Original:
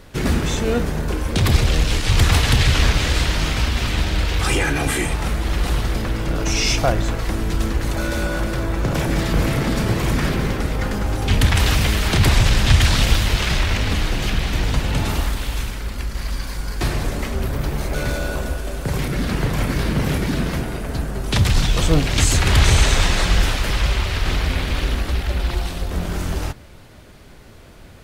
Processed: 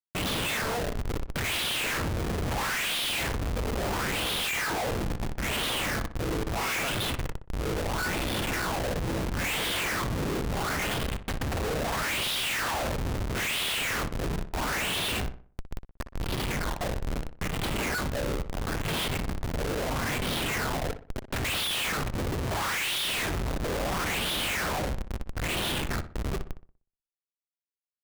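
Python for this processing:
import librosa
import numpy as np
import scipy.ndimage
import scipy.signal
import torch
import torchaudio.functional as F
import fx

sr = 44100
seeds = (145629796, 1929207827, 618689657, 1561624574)

p1 = fx.wah_lfo(x, sr, hz=0.75, low_hz=440.0, high_hz=3400.0, q=4.4)
p2 = fx.phaser_stages(p1, sr, stages=2, low_hz=160.0, high_hz=1100.0, hz=1.0, feedback_pct=35)
p3 = fx.schmitt(p2, sr, flips_db=-40.5)
p4 = p3 + fx.echo_filtered(p3, sr, ms=61, feedback_pct=39, hz=2400.0, wet_db=-11, dry=0)
y = p4 * librosa.db_to_amplitude(8.0)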